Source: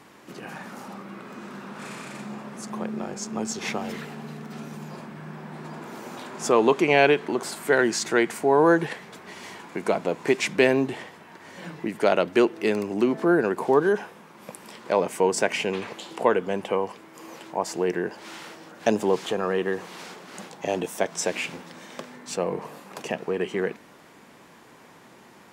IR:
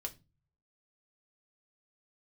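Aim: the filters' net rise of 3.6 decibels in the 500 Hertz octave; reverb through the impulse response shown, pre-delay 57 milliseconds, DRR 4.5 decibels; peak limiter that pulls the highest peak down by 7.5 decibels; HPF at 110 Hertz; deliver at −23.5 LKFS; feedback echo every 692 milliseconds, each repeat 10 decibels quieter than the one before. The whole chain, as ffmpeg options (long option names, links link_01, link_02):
-filter_complex "[0:a]highpass=110,equalizer=frequency=500:width_type=o:gain=4.5,alimiter=limit=-10.5dB:level=0:latency=1,aecho=1:1:692|1384|2076|2768:0.316|0.101|0.0324|0.0104,asplit=2[link_01][link_02];[1:a]atrim=start_sample=2205,adelay=57[link_03];[link_02][link_03]afir=irnorm=-1:irlink=0,volume=-2.5dB[link_04];[link_01][link_04]amix=inputs=2:normalize=0"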